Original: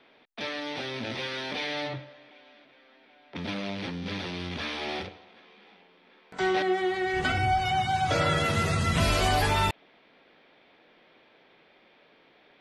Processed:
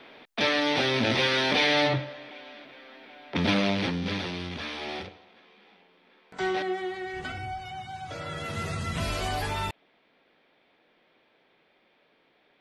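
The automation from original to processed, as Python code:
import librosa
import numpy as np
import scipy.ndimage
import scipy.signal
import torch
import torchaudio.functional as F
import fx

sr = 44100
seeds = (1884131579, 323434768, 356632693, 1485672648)

y = fx.gain(x, sr, db=fx.line((3.58, 9.5), (4.61, -2.0), (6.46, -2.0), (7.7, -12.5), (8.21, -12.5), (8.63, -6.0)))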